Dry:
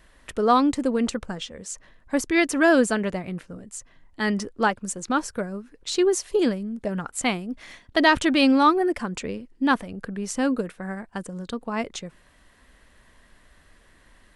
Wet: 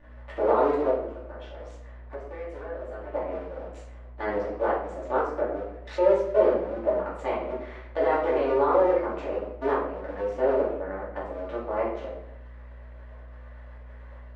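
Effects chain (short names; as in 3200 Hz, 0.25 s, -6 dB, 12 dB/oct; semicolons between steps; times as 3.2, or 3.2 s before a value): cycle switcher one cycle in 2, muted; limiter -15.5 dBFS, peak gain reduction 10.5 dB; 0.89–3.14 compressor 6:1, threshold -41 dBFS, peak gain reduction 18.5 dB; ladder band-pass 660 Hz, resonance 40%; hum 60 Hz, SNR 22 dB; shoebox room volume 140 m³, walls mixed, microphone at 2.5 m; mismatched tape noise reduction encoder only; gain +6 dB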